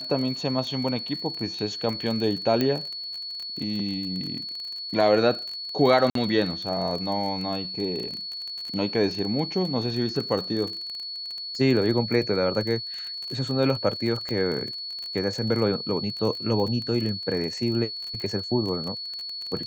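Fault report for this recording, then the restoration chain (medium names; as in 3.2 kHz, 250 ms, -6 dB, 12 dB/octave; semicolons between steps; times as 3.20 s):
crackle 28 per s -30 dBFS
whine 4.4 kHz -32 dBFS
2.61 s: pop -11 dBFS
6.10–6.15 s: dropout 53 ms
14.29 s: pop -18 dBFS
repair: de-click; band-stop 4.4 kHz, Q 30; interpolate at 6.10 s, 53 ms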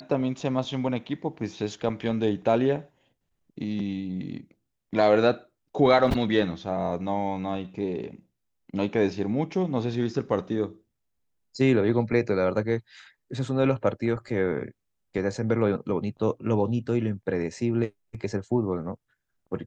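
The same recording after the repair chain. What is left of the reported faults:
nothing left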